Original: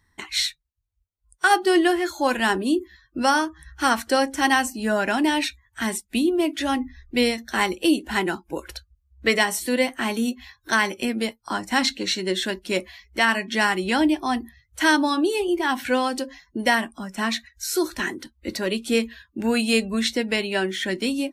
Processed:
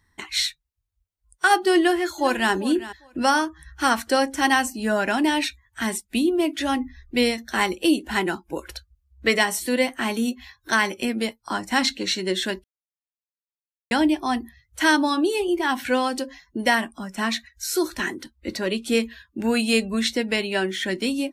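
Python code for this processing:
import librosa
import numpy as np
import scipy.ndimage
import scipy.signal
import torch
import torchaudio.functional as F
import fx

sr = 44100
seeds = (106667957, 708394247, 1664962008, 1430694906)

y = fx.echo_throw(x, sr, start_s=1.78, length_s=0.74, ms=400, feedback_pct=15, wet_db=-15.5)
y = fx.high_shelf(y, sr, hz=10000.0, db=-7.0, at=(18.35, 18.86))
y = fx.edit(y, sr, fx.silence(start_s=12.64, length_s=1.27), tone=tone)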